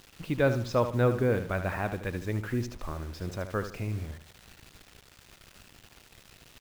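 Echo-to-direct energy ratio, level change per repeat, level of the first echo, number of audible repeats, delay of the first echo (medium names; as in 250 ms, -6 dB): -9.5 dB, -9.5 dB, -10.0 dB, 3, 75 ms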